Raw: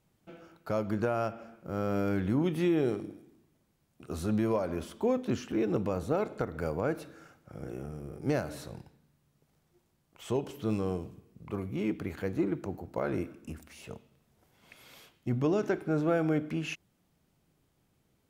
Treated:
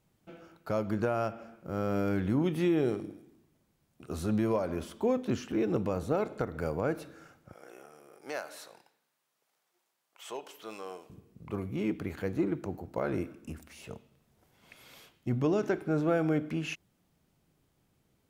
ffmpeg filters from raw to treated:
ffmpeg -i in.wav -filter_complex "[0:a]asettb=1/sr,asplit=3[link_01][link_02][link_03];[link_01]atrim=end=7.534[link_04];[link_02]atrim=start=7.53:end=11.1,asetpts=PTS-STARTPTS,afade=type=in:duration=0.004:curve=qsin,afade=type=out:start_time=3.566:duration=0.004:curve=qsin,highpass=730[link_05];[link_03]atrim=start=11.096[link_06];[link_04][link_05]acrossfade=duration=0.004:curve1=hsin:curve2=qsin[link_07];[link_07][link_06]acrossfade=duration=0.004:curve1=qsin:curve2=hsin" out.wav

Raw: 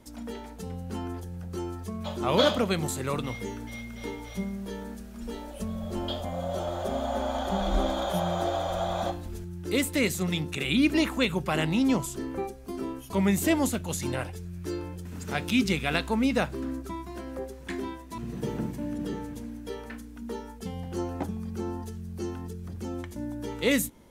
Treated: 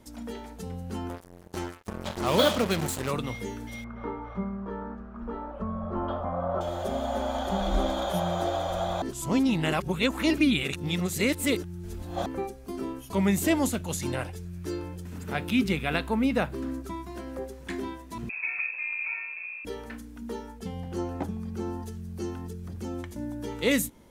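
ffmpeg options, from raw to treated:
ffmpeg -i in.wav -filter_complex "[0:a]asettb=1/sr,asplit=3[link_01][link_02][link_03];[link_01]atrim=end=1.094[link_04];[link_02]atrim=start=1.09:end=3.11,asetpts=PTS-STARTPTS,afade=type=in:duration=0.004:curve=qsin,afade=type=out:start_time=2.016:duration=0.004:curve=qsin,acrusher=bits=4:mix=0:aa=0.5[link_05];[link_03]atrim=start=3.106[link_06];[link_04][link_05]acrossfade=duration=0.004:curve1=hsin:curve2=qsin[link_07];[link_07][link_06]acrossfade=duration=0.004:curve1=qsin:curve2=hsin,asettb=1/sr,asplit=3[link_08][link_09][link_10];[link_08]atrim=end=3.844[link_11];[link_09]atrim=start=3.84:end=6.61,asetpts=PTS-STARTPTS,afade=type=in:duration=0.004:curve=qsin,afade=type=out:start_time=2.766:duration=0.004:curve=qsin,lowpass=frequency=1200:width_type=q:width=4[link_12];[link_10]atrim=start=6.606[link_13];[link_11][link_12]acrossfade=duration=0.004:curve1=hsin:curve2=qsin[link_14];[link_14][link_13]acrossfade=duration=0.004:curve1=qsin:curve2=hsin,asettb=1/sr,asplit=3[link_15][link_16][link_17];[link_15]atrim=end=15.184[link_18];[link_16]atrim=start=15.18:end=16.54,asetpts=PTS-STARTPTS,afade=type=in:duration=0.004:curve=qsin,afade=type=out:start_time=1.356:duration=0.004:curve=qsin,equalizer=frequency=6200:width=0.97:gain=-8.5[link_19];[link_17]atrim=start=16.536[link_20];[link_18][link_19]acrossfade=duration=0.004:curve1=hsin:curve2=qsin[link_21];[link_21][link_20]acrossfade=duration=0.004:curve1=qsin:curve2=hsin,asettb=1/sr,asplit=3[link_22][link_23][link_24];[link_22]atrim=end=18.294[link_25];[link_23]atrim=start=18.29:end=19.65,asetpts=PTS-STARTPTS,afade=type=in:duration=0.004:curve=qsin,afade=type=out:start_time=1.356:duration=0.004:curve=qsin,lowpass=frequency=2300:width_type=q:width=0.5098,lowpass=frequency=2300:width_type=q:width=0.6013,lowpass=frequency=2300:width_type=q:width=0.9,lowpass=frequency=2300:width_type=q:width=2.563,afreqshift=-2700[link_26];[link_24]atrim=start=19.646[link_27];[link_25][link_26]acrossfade=duration=0.004:curve1=hsin:curve2=qsin[link_28];[link_28][link_27]acrossfade=duration=0.004:curve1=qsin:curve2=hsin,asettb=1/sr,asplit=3[link_29][link_30][link_31];[link_29]atrim=end=20.464[link_32];[link_30]atrim=start=20.46:end=21.61,asetpts=PTS-STARTPTS,afade=type=in:duration=0.004:curve=qsin,afade=type=out:start_time=1.146:duration=0.004:curve=qsin,highshelf=frequency=4900:gain=-4[link_33];[link_31]atrim=start=21.606[link_34];[link_32][link_33]acrossfade=duration=0.004:curve1=hsin:curve2=qsin[link_35];[link_35][link_34]acrossfade=duration=0.004:curve1=qsin:curve2=hsin,asplit=3[link_36][link_37][link_38];[link_36]atrim=end=9.022[link_39];[link_37]atrim=start=9.018:end=12.262,asetpts=PTS-STARTPTS,areverse[link_40];[link_38]atrim=start=12.258[link_41];[link_39][link_40]acrossfade=duration=0.004:curve1=hsin:curve2=hsin[link_42];[link_42][link_41]acrossfade=duration=0.004:curve1=hsin:curve2=hsin" out.wav

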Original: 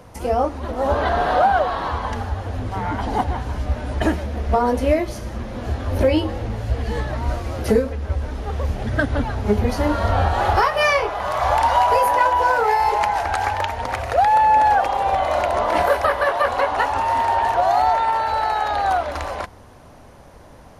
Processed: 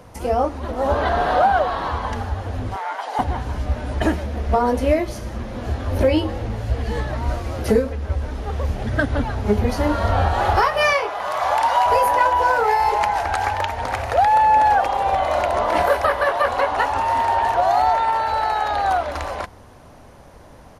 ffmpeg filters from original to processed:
ffmpeg -i in.wav -filter_complex "[0:a]asettb=1/sr,asplit=3[link_01][link_02][link_03];[link_01]atrim=end=2.764[link_04];[link_02]atrim=start=2.76:end=3.19,asetpts=PTS-STARTPTS,afade=type=in:duration=0.004:curve=qsin,afade=type=out:start_time=0.426:duration=0.004:curve=qsin,highpass=frequency=560:width=0.5412,highpass=frequency=560:width=1.3066[link_05];[link_03]atrim=start=3.186[link_06];[link_04][link_05]acrossfade=duration=0.004:curve1=hsin:curve2=qsin[link_07];[link_07][link_06]acrossfade=duration=0.004:curve1=qsin:curve2=hsin,asettb=1/sr,asplit=3[link_08][link_09][link_10];[link_08]atrim=end=10.934[link_11];[link_09]atrim=start=10.93:end=11.86,asetpts=PTS-STARTPTS,afade=type=in:duration=0.004:curve=qsin,afade=type=out:start_time=0.926:duration=0.004:curve=qsin,highpass=frequency=420:poles=1[link_12];[link_10]atrim=start=11.856[link_13];[link_11][link_12]acrossfade=duration=0.004:curve1=hsin:curve2=qsin[link_14];[link_14][link_13]acrossfade=duration=0.004:curve1=qsin:curve2=hsin,asplit=2[link_15][link_16];[link_16]afade=type=in:start_time=13.24:duration=0.01,afade=type=out:start_time=13.75:duration=0.01,aecho=0:1:530|1060|1590|2120:0.251189|0.087916|0.0307706|0.0107697[link_17];[link_15][link_17]amix=inputs=2:normalize=0" out.wav

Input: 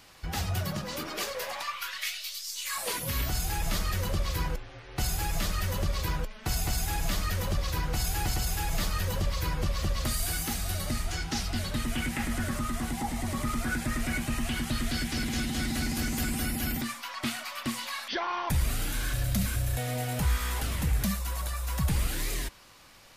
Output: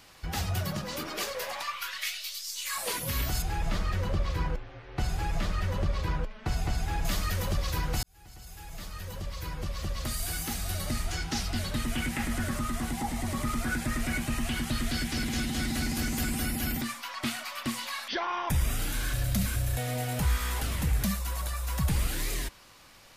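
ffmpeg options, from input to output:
ffmpeg -i in.wav -filter_complex "[0:a]asettb=1/sr,asplit=3[link_01][link_02][link_03];[link_01]atrim=end=3.424[link_04];[link_02]atrim=start=3.42:end=7.05,asetpts=PTS-STARTPTS,afade=type=in:duration=0.004:curve=qsin,afade=type=out:start_time=3.626:duration=0.004:curve=qsin,aemphasis=mode=reproduction:type=75fm[link_05];[link_03]atrim=start=7.046[link_06];[link_04][link_05]acrossfade=duration=0.004:curve1=hsin:curve2=qsin[link_07];[link_07][link_06]acrossfade=duration=0.004:curve1=qsin:curve2=hsin,asettb=1/sr,asplit=3[link_08][link_09][link_10];[link_08]atrim=end=18.254[link_11];[link_09]atrim=start=18.25:end=18.79,asetpts=PTS-STARTPTS,afade=type=in:duration=0.004:curve=qsin,afade=type=out:start_time=0.536:duration=0.004:curve=qsin,asuperstop=centerf=4300:order=4:qfactor=6.3[link_12];[link_10]atrim=start=18.786[link_13];[link_11][link_12]acrossfade=duration=0.004:curve1=hsin:curve2=qsin[link_14];[link_14][link_13]acrossfade=duration=0.004:curve1=qsin:curve2=hsin,asplit=2[link_15][link_16];[link_15]atrim=end=8.03,asetpts=PTS-STARTPTS,afade=type=out:start_time=8.026:duration=0.004:curve=hsin[link_17];[link_16]atrim=start=8.03,asetpts=PTS-STARTPTS,afade=type=in:duration=2.99[link_18];[link_17][link_18]concat=n=2:v=0:a=1" out.wav

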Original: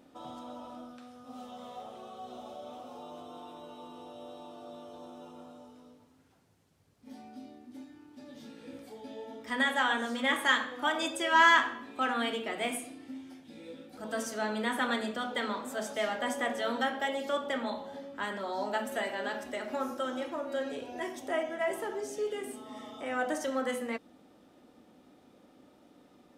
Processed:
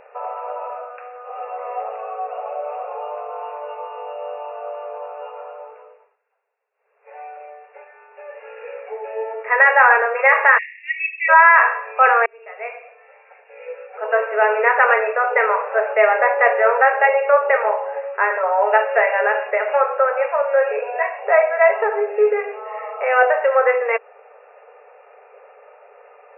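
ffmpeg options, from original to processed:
ffmpeg -i in.wav -filter_complex "[0:a]asplit=3[link_01][link_02][link_03];[link_01]afade=type=out:start_time=10.57:duration=0.02[link_04];[link_02]asuperpass=centerf=2700:order=20:qfactor=1.4,afade=type=in:start_time=10.57:duration=0.02,afade=type=out:start_time=11.28:duration=0.02[link_05];[link_03]afade=type=in:start_time=11.28:duration=0.02[link_06];[link_04][link_05][link_06]amix=inputs=3:normalize=0,asplit=4[link_07][link_08][link_09][link_10];[link_07]atrim=end=6.19,asetpts=PTS-STARTPTS,afade=type=out:start_time=5.74:duration=0.45:silence=0.1[link_11];[link_08]atrim=start=6.19:end=6.74,asetpts=PTS-STARTPTS,volume=-20dB[link_12];[link_09]atrim=start=6.74:end=12.26,asetpts=PTS-STARTPTS,afade=type=in:duration=0.45:silence=0.1,afade=type=out:start_time=5.516:duration=0.004:curve=hsin[link_13];[link_10]atrim=start=12.26,asetpts=PTS-STARTPTS,afade=type=in:duration=1.9[link_14];[link_11][link_12][link_13][link_14]concat=n=4:v=0:a=1,afftfilt=real='re*between(b*sr/4096,400,2800)':imag='im*between(b*sr/4096,400,2800)':win_size=4096:overlap=0.75,alimiter=level_in=19dB:limit=-1dB:release=50:level=0:latency=1,volume=-1dB" out.wav

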